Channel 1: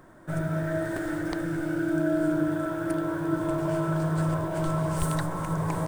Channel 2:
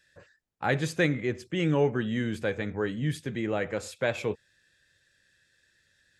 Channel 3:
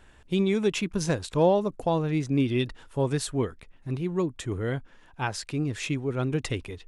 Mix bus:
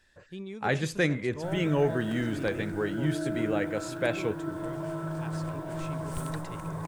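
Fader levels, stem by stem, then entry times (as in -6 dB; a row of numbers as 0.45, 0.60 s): -7.5, -1.0, -16.0 dB; 1.15, 0.00, 0.00 s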